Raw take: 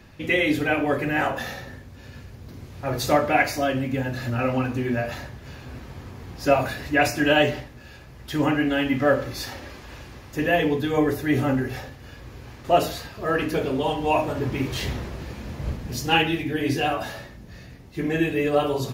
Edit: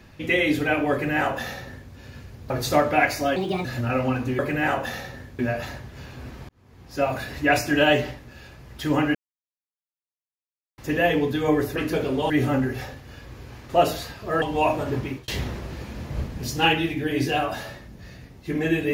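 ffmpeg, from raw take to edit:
ffmpeg -i in.wav -filter_complex "[0:a]asplit=13[link_01][link_02][link_03][link_04][link_05][link_06][link_07][link_08][link_09][link_10][link_11][link_12][link_13];[link_01]atrim=end=2.502[link_14];[link_02]atrim=start=2.868:end=3.734[link_15];[link_03]atrim=start=3.73:end=4.14,asetpts=PTS-STARTPTS,asetrate=62622,aresample=44100,atrim=end_sample=12733,asetpts=PTS-STARTPTS[link_16];[link_04]atrim=start=4.136:end=4.882[link_17];[link_05]atrim=start=0.918:end=1.922[link_18];[link_06]atrim=start=4.878:end=5.98,asetpts=PTS-STARTPTS,afade=type=out:start_time=1.098:duration=0.004:curve=hsin[link_19];[link_07]atrim=start=5.98:end=8.64,asetpts=PTS-STARTPTS,afade=type=in:duration=0.92,afade=type=out:start_time=2.656:duration=0.004:curve=hsin[link_20];[link_08]atrim=start=8.64:end=10.27,asetpts=PTS-STARTPTS,volume=0[link_21];[link_09]atrim=start=10.27:end=11.252,asetpts=PTS-STARTPTS,afade=type=in:duration=0.004:curve=hsin[link_22];[link_10]atrim=start=13.368:end=13.912[link_23];[link_11]atrim=start=11.248:end=13.372[link_24];[link_12]atrim=start=13.908:end=14.77,asetpts=PTS-STARTPTS,afade=type=out:start_time=0.552:duration=0.31[link_25];[link_13]atrim=start=14.77,asetpts=PTS-STARTPTS,afade=type=in:duration=0.004:curve=hsin[link_26];[link_14][link_15]acrossfade=duration=0.004:curve1=hsin:curve2=hsin[link_27];[link_27][link_16]acrossfade=duration=0.004:curve1=hsin:curve2=hsin[link_28];[link_28][link_17]acrossfade=duration=0.004:curve1=hsin:curve2=hsin[link_29];[link_29][link_18]acrossfade=duration=0.004:curve1=hsin:curve2=hsin[link_30];[link_19][link_20][link_21][link_22]concat=n=4:v=0:a=1[link_31];[link_30][link_31]acrossfade=duration=0.004:curve1=hsin:curve2=hsin[link_32];[link_32][link_23]acrossfade=duration=0.004:curve1=hsin:curve2=hsin[link_33];[link_33][link_24]acrossfade=duration=0.004:curve1=hsin:curve2=hsin[link_34];[link_25][link_26]concat=n=2:v=0:a=1[link_35];[link_34][link_35]acrossfade=duration=0.004:curve1=hsin:curve2=hsin" out.wav

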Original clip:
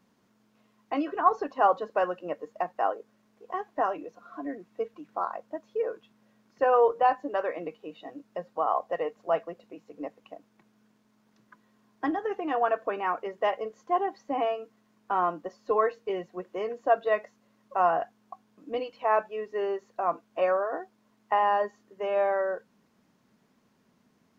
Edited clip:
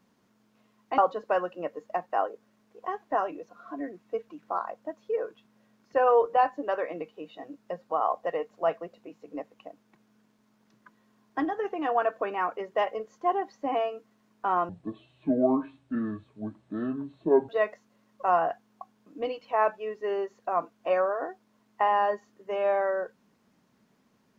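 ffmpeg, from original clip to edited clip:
ffmpeg -i in.wav -filter_complex "[0:a]asplit=4[link_01][link_02][link_03][link_04];[link_01]atrim=end=0.982[link_05];[link_02]atrim=start=1.638:end=15.354[link_06];[link_03]atrim=start=15.35:end=17,asetpts=PTS-STARTPTS,asetrate=26019,aresample=44100[link_07];[link_04]atrim=start=16.996[link_08];[link_05][link_06]acrossfade=duration=0.004:curve1=hsin:curve2=hsin[link_09];[link_09][link_07]acrossfade=duration=0.004:curve1=hsin:curve2=hsin[link_10];[link_10][link_08]acrossfade=duration=0.004:curve1=hsin:curve2=hsin" out.wav

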